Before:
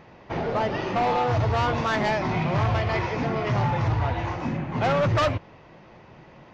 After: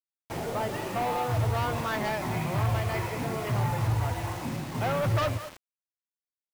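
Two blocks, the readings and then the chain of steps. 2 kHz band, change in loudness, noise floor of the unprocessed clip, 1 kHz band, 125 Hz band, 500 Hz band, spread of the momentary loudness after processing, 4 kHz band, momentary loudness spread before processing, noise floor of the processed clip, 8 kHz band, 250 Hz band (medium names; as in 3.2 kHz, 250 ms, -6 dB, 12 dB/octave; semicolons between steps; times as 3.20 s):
-5.5 dB, -4.5 dB, -50 dBFS, -5.5 dB, -3.0 dB, -6.0 dB, 7 LU, -4.5 dB, 6 LU, under -85 dBFS, no reading, -5.5 dB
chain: dynamic bell 110 Hz, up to +5 dB, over -40 dBFS, Q 4.9; speakerphone echo 200 ms, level -10 dB; word length cut 6-bit, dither none; trim -6 dB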